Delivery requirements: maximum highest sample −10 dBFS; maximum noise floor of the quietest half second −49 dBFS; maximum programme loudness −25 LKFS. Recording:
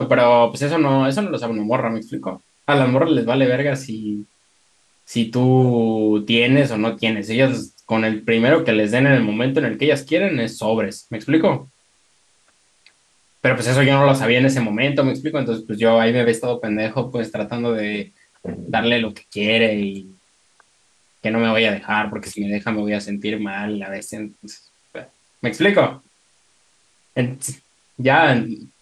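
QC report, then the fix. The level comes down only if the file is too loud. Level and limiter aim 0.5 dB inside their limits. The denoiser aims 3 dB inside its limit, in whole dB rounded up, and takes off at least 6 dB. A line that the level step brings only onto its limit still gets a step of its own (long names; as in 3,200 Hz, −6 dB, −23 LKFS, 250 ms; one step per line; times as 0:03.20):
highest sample −3.5 dBFS: out of spec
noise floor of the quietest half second −60 dBFS: in spec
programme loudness −18.5 LKFS: out of spec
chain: level −7 dB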